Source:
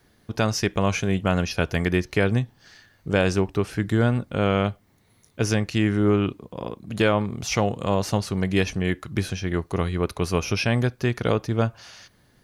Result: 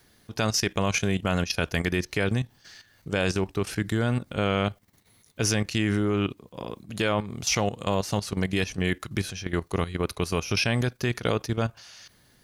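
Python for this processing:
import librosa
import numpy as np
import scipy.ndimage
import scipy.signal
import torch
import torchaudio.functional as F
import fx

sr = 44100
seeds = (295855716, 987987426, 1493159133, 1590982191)

y = fx.high_shelf(x, sr, hz=2300.0, db=8.0)
y = fx.level_steps(y, sr, step_db=12)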